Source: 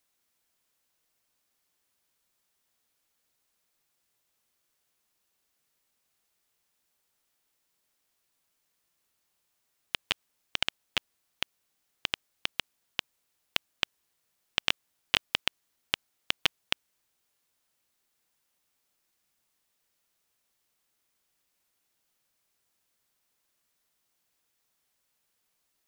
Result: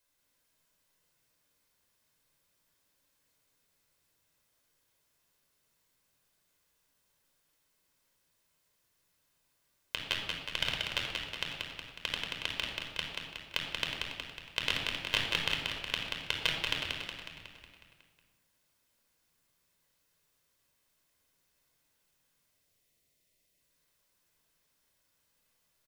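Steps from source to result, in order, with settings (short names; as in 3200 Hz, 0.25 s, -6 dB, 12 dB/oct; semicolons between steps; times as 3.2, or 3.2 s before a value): spectral gain 22.48–23.61, 770–1800 Hz -12 dB; in parallel at -1.5 dB: limiter -12.5 dBFS, peak gain reduction 9 dB; on the sum: flange 0.16 Hz, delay 3.1 ms, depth 7.7 ms, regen -70%; frequency-shifting echo 0.183 s, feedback 58%, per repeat -40 Hz, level -4 dB; reverb RT60 0.95 s, pre-delay 26 ms, DRR 2 dB; gain -4.5 dB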